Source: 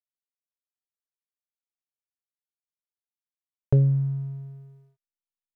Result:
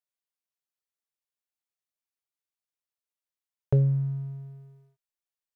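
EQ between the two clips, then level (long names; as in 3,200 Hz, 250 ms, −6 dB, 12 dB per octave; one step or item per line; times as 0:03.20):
low-shelf EQ 61 Hz −11 dB
parametric band 240 Hz −10 dB 0.47 octaves
0.0 dB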